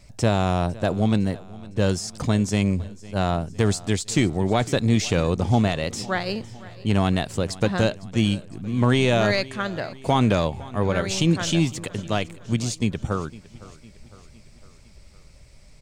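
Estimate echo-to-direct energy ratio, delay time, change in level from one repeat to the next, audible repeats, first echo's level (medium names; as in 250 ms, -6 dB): -18.5 dB, 507 ms, -5.0 dB, 3, -20.0 dB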